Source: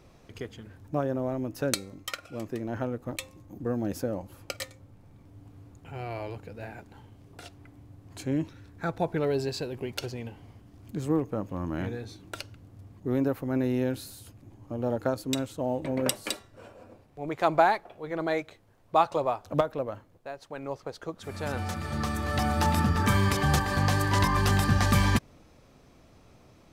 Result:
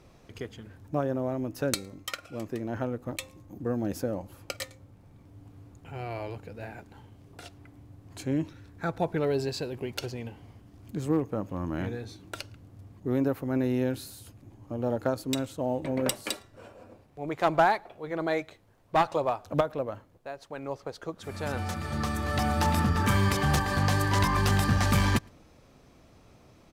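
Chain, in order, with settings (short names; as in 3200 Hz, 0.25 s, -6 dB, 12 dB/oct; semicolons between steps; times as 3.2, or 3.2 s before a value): one-sided clip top -20.5 dBFS; outdoor echo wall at 19 m, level -30 dB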